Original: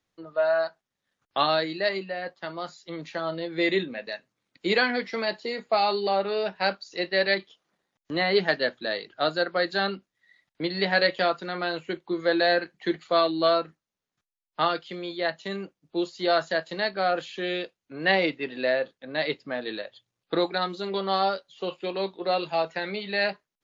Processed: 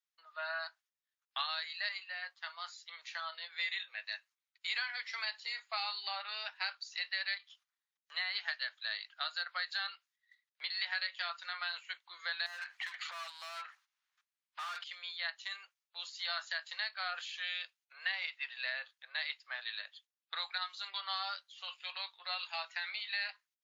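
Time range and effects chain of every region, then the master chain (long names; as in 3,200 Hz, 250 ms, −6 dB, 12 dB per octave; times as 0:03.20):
0:12.46–0:14.84: mid-hump overdrive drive 31 dB, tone 1,400 Hz, clips at −9 dBFS + downward compressor 4 to 1, threshold −34 dBFS
whole clip: noise gate −57 dBFS, range −11 dB; Bessel high-pass filter 1,600 Hz, order 6; downward compressor 5 to 1, threshold −32 dBFS; level −1.5 dB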